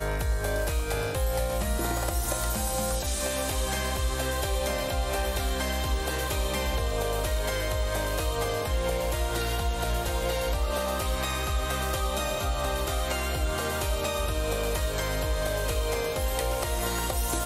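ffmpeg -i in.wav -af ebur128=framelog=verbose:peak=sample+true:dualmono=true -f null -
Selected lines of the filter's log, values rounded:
Integrated loudness:
  I:         -25.7 LUFS
  Threshold: -35.7 LUFS
Loudness range:
  LRA:         0.4 LU
  Threshold: -45.7 LUFS
  LRA low:   -25.8 LUFS
  LRA high:  -25.4 LUFS
Sample peak:
  Peak:      -11.3 dBFS
True peak:
  Peak:      -11.1 dBFS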